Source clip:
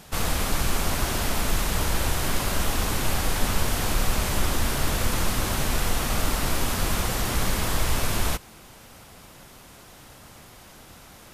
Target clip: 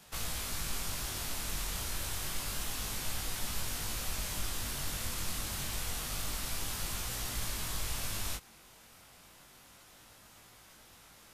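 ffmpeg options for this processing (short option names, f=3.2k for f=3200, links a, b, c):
-filter_complex "[0:a]flanger=delay=18:depth=4.3:speed=0.28,tiltshelf=f=970:g=-3.5,acrossover=split=190|3000[a][b][c];[b]acompressor=threshold=-36dB:ratio=6[d];[a][d][c]amix=inputs=3:normalize=0,volume=-7.5dB"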